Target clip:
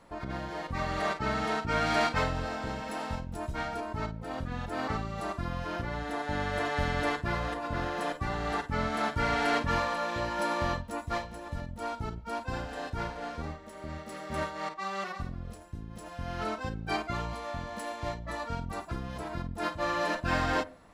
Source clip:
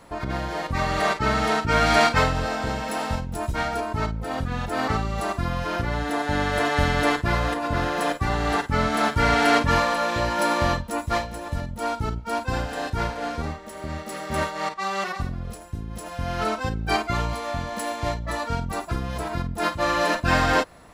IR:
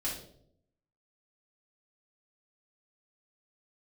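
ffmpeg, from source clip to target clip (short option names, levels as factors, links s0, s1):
-filter_complex "[0:a]asoftclip=type=hard:threshold=0.282,highshelf=f=9600:g=-8.5,asplit=2[s0][s1];[1:a]atrim=start_sample=2205,atrim=end_sample=6174,lowpass=2100[s2];[s1][s2]afir=irnorm=-1:irlink=0,volume=0.141[s3];[s0][s3]amix=inputs=2:normalize=0,volume=0.376"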